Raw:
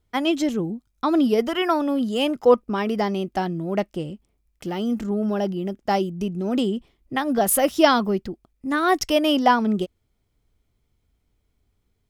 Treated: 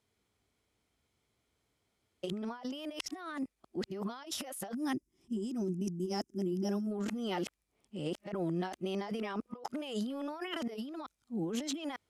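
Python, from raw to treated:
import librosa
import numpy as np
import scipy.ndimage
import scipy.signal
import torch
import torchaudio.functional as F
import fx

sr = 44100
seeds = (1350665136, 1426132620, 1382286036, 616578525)

y = np.flip(x).copy()
y = scipy.signal.sosfilt(scipy.signal.butter(2, 77.0, 'highpass', fs=sr, output='sos'), y)
y = fx.spec_box(y, sr, start_s=4.74, length_s=2.17, low_hz=390.0, high_hz=4900.0, gain_db=-15)
y = scipy.signal.sosfilt(scipy.signal.butter(4, 12000.0, 'lowpass', fs=sr, output='sos'), y)
y = fx.low_shelf(y, sr, hz=270.0, db=-11.5)
y = fx.over_compress(y, sr, threshold_db=-33.0, ratio=-1.0)
y = y * 10.0 ** (-5.5 / 20.0)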